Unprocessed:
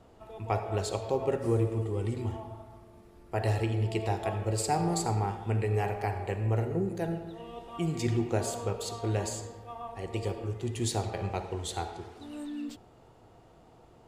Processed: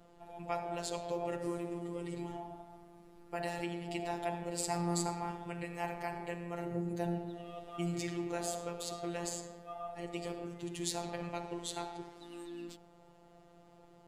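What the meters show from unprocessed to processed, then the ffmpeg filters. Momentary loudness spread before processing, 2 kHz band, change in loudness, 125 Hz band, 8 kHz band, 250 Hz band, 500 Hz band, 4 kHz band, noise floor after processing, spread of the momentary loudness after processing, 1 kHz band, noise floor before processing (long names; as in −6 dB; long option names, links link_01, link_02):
14 LU, −4.0 dB, −7.5 dB, −13.5 dB, −3.5 dB, −5.0 dB, −7.0 dB, −3.5 dB, −61 dBFS, 11 LU, −5.5 dB, −57 dBFS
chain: -filter_complex "[0:a]acrossover=split=660[link_01][link_02];[link_01]alimiter=level_in=4.5dB:limit=-24dB:level=0:latency=1:release=22,volume=-4.5dB[link_03];[link_03][link_02]amix=inputs=2:normalize=0,afftfilt=real='hypot(re,im)*cos(PI*b)':imag='0':win_size=1024:overlap=0.75"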